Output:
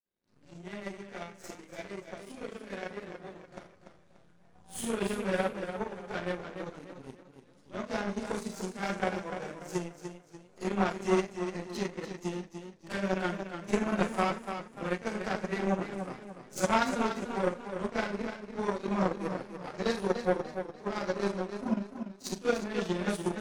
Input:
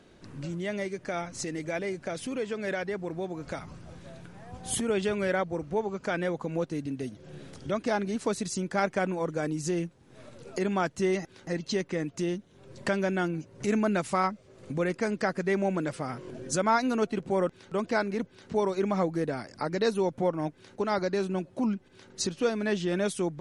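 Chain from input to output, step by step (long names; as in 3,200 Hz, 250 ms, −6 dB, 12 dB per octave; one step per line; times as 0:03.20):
four-comb reverb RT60 0.43 s, combs from 31 ms, DRR −10 dB
power curve on the samples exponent 2
feedback echo with a swinging delay time 293 ms, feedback 37%, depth 69 cents, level −8.5 dB
level −6.5 dB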